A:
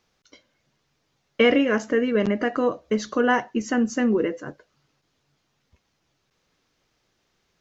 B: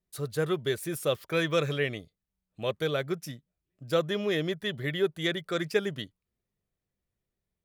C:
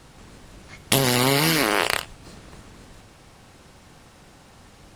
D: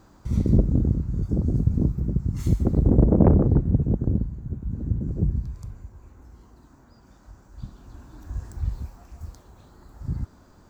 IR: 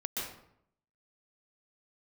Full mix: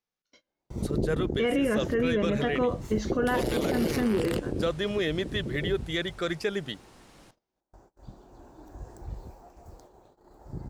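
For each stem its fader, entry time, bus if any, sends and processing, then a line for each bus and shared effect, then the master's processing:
+3.0 dB, 0.00 s, no send, harmonic and percussive parts rebalanced percussive −11 dB
+1.5 dB, 0.70 s, no send, low-pass filter 9,700 Hz 12 dB per octave
−7.0 dB, 2.35 s, no send, brickwall limiter −10.5 dBFS, peak gain reduction 9 dB; speech leveller 0.5 s
−6.0 dB, 0.45 s, no send, downward expander −45 dBFS; flat-topped bell 540 Hz +10.5 dB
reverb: not used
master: noise gate −56 dBFS, range −21 dB; parametric band 73 Hz −8 dB 1.3 octaves; brickwall limiter −18 dBFS, peak gain reduction 15 dB

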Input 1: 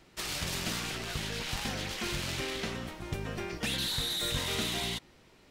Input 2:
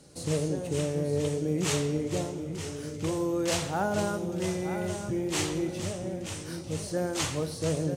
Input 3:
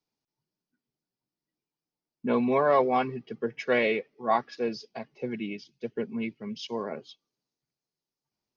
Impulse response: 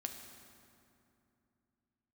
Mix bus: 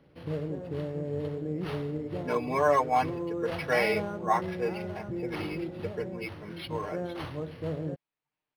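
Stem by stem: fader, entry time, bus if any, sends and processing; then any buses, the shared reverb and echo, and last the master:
muted
−4.5 dB, 0.00 s, no send, notch filter 2,400 Hz, Q 17
−2.5 dB, 0.00 s, no send, tilt shelving filter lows −6 dB, about 690 Hz; comb filter 6.6 ms, depth 73%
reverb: not used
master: high-shelf EQ 3,400 Hz −8 dB; linearly interpolated sample-rate reduction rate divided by 6×

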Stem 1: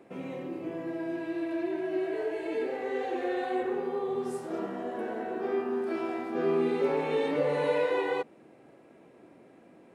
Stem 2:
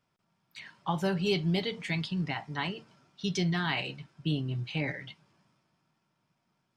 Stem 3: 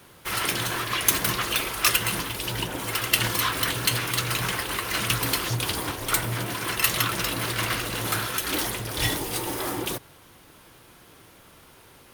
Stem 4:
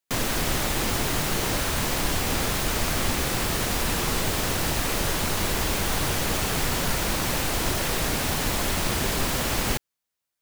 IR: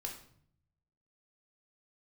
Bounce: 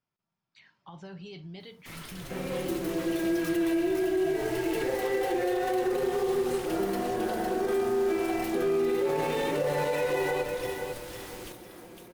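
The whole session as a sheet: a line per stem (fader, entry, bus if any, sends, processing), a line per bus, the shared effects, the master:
+0.5 dB, 2.20 s, send −6.5 dB, echo send −7.5 dB, gap after every zero crossing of 0.068 ms; comb filter 5.6 ms, depth 61%
−12.5 dB, 0.00 s, send −14.5 dB, no echo send, low-pass filter 6,800 Hz 24 dB per octave; brickwall limiter −24.5 dBFS, peak gain reduction 9 dB
−19.5 dB, 1.60 s, no send, echo send −4 dB, wave folding −16 dBFS
−19.5 dB, 1.75 s, no send, echo send −15 dB, rotating-speaker cabinet horn 0.6 Hz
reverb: on, RT60 0.60 s, pre-delay 3 ms
echo: repeating echo 506 ms, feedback 29%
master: brickwall limiter −20 dBFS, peak gain reduction 8.5 dB

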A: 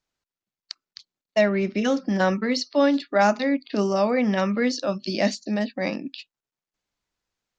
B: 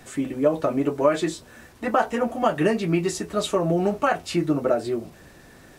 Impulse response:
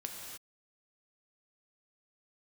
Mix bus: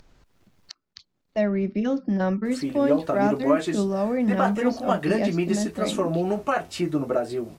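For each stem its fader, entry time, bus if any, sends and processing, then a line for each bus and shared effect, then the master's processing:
−6.5 dB, 0.00 s, no send, spectral tilt −3 dB per octave
−2.5 dB, 2.45 s, no send, tape wow and flutter 43 cents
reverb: not used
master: upward compression, threshold −32 dBFS

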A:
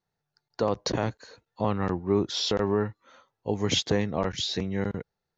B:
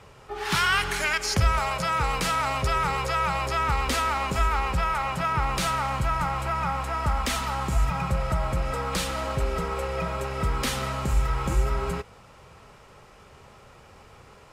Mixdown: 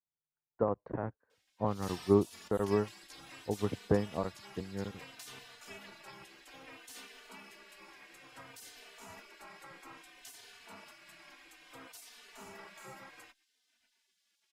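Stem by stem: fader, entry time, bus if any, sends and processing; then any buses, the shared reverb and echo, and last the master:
0.0 dB, 0.00 s, no send, low-pass filter 1,600 Hz 24 dB per octave; expander for the loud parts 2.5 to 1, over −36 dBFS
−10.5 dB, 1.30 s, no send, parametric band 7,900 Hz −3 dB 0.79 octaves; gate on every frequency bin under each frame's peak −20 dB weak; barber-pole flanger 3.2 ms −0.6 Hz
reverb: not used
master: no processing

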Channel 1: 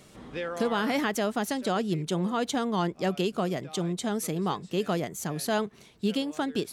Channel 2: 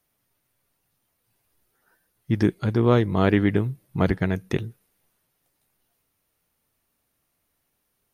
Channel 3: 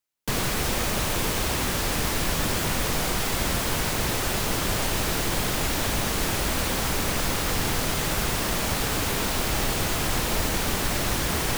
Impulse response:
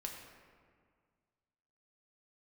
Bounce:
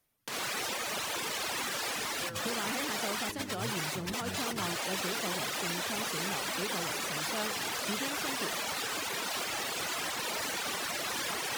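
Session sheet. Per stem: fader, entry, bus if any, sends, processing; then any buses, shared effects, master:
−11.5 dB, 1.85 s, no bus, no send, no processing
−4.0 dB, 0.00 s, muted 0:02.41–0:03.29, bus A, no send, reverb reduction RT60 1.2 s; soft clipping −16.5 dBFS, distortion −11 dB
−0.5 dB, 0.00 s, bus A, no send, meter weighting curve A; reverb reduction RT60 1.6 s
bus A: 0.0 dB, compressor whose output falls as the input rises −32 dBFS, ratio −0.5; brickwall limiter −25.5 dBFS, peak gain reduction 6.5 dB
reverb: not used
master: no processing

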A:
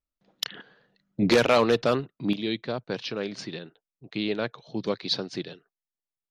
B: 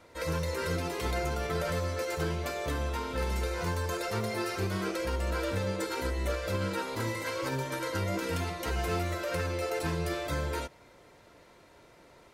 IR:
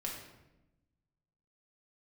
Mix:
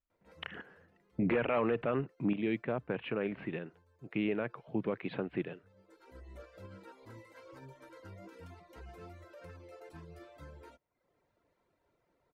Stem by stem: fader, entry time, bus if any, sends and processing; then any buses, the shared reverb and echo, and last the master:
−1.5 dB, 0.00 s, no send, Butterworth low-pass 2,700 Hz 48 dB per octave
−17.0 dB, 0.10 s, no send, reverb reduction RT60 0.68 s; high-shelf EQ 2,700 Hz −11 dB; automatic ducking −18 dB, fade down 0.85 s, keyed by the first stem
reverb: not used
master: brickwall limiter −22.5 dBFS, peak gain reduction 10.5 dB

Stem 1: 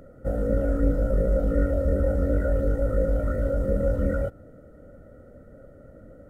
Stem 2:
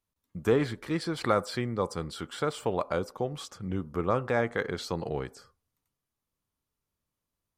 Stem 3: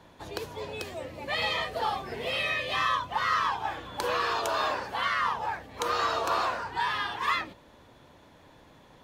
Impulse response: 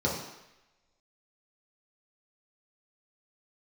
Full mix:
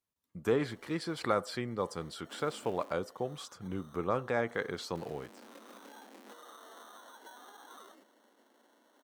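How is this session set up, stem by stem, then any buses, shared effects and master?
−18.0 dB, 2.05 s, muted 0:02.93–0:04.95, bus A, no send, comparator with hysteresis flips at −24.5 dBFS
0:04.96 −4 dB → 0:05.55 −14 dB, 0.00 s, no bus, no send, high-pass filter 140 Hz 6 dB per octave
−10.5 dB, 0.50 s, bus A, no send, downward compressor, threshold −30 dBFS, peak gain reduction 8 dB; decimation without filtering 18×; asymmetric clip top −37.5 dBFS; automatic ducking −15 dB, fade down 1.45 s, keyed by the second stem
bus A: 0.0 dB, Butterworth high-pass 210 Hz 96 dB per octave; downward compressor 4 to 1, threshold −50 dBFS, peak gain reduction 8 dB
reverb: not used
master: no processing

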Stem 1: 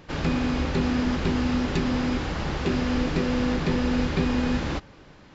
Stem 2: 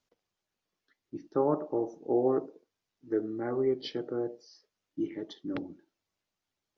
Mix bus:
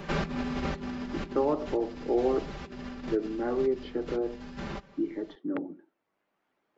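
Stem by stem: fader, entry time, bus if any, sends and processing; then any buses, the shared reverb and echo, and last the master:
−3.0 dB, 0.00 s, no send, comb filter 5.1 ms, depth 90%; compressor whose output falls as the input rises −25 dBFS, ratio −0.5; automatic ducking −14 dB, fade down 1.85 s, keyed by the second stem
+2.5 dB, 0.00 s, no send, three-way crossover with the lows and the highs turned down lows −24 dB, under 180 Hz, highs −23 dB, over 2,300 Hz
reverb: not used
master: multiband upward and downward compressor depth 40%

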